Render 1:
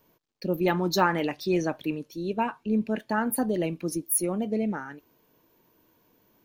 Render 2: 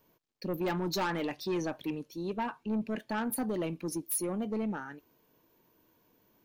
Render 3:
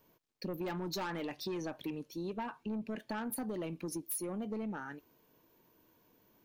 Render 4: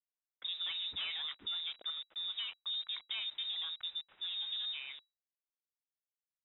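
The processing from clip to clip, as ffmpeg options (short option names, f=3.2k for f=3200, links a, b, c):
-af "asoftclip=type=tanh:threshold=-23dB,volume=-3.5dB"
-af "acompressor=threshold=-36dB:ratio=6"
-af "aeval=exprs='val(0)*gte(abs(val(0)),0.00422)':c=same,lowpass=f=3.3k:t=q:w=0.5098,lowpass=f=3.3k:t=q:w=0.6013,lowpass=f=3.3k:t=q:w=0.9,lowpass=f=3.3k:t=q:w=2.563,afreqshift=-3900,volume=-1dB"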